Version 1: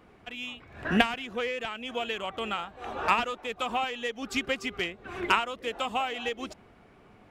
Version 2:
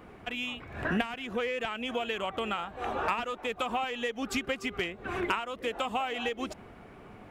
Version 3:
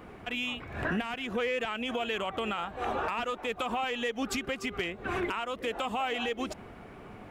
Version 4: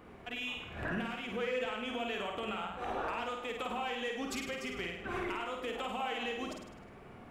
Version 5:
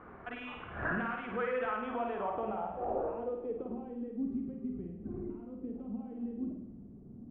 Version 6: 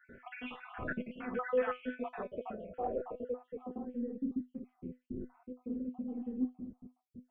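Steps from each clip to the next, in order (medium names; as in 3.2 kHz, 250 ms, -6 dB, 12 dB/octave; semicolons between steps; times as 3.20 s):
peaking EQ 4.8 kHz -4.5 dB 1.4 oct; compression 3:1, threshold -37 dBFS, peak gain reduction 15 dB; trim +6.5 dB
peak limiter -25 dBFS, peak gain reduction 9.5 dB; trim +2.5 dB
flutter echo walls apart 8.8 m, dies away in 0.75 s; trim -7 dB
low-pass sweep 1.4 kHz -> 240 Hz, 1.65–4.26 s; feedback echo behind a high-pass 210 ms, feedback 61%, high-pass 1.8 kHz, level -15 dB
random holes in the spectrogram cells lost 57%; feedback comb 250 Hz, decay 0.17 s, harmonics all, mix 80%; trim +8.5 dB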